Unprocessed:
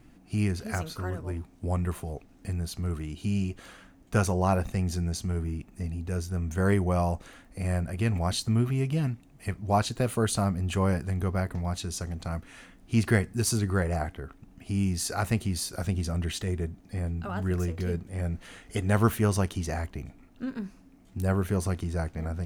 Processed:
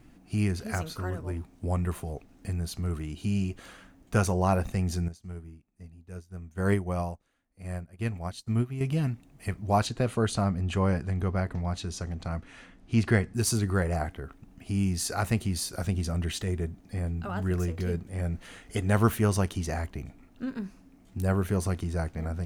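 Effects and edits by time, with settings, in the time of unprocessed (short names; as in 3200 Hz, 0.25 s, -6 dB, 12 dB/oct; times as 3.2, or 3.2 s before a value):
5.08–8.81 upward expander 2.5:1, over -38 dBFS
9.87–13.35 air absorption 56 m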